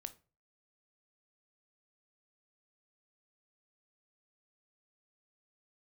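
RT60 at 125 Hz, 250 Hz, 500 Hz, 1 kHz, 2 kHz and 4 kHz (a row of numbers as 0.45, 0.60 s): 0.50, 0.35, 0.40, 0.35, 0.30, 0.25 s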